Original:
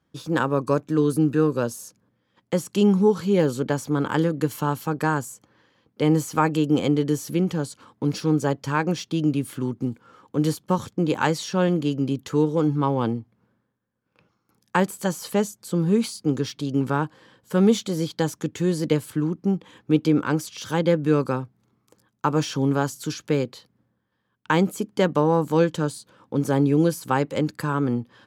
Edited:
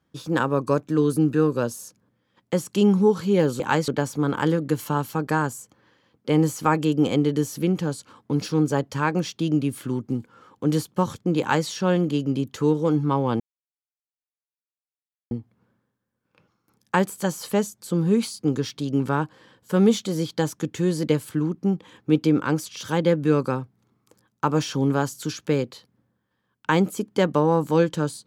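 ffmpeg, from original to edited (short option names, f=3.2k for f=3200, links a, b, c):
-filter_complex "[0:a]asplit=4[a][b][c][d];[a]atrim=end=3.602[e];[b]atrim=start=11.118:end=11.402[f];[c]atrim=start=3.598:end=13.12,asetpts=PTS-STARTPTS,afade=t=out:st=9.518:d=0.004:c=hsin,apad=pad_dur=1.91[g];[d]atrim=start=13.12,asetpts=PTS-STARTPTS,afade=t=in:d=0.004:c=hsin[h];[e][f]acrossfade=d=0.004:c1=hsin:c2=hsin[i];[g][h]concat=n=2:v=0:a=1[j];[i][j]acrossfade=d=0.004:c1=hsin:c2=hsin"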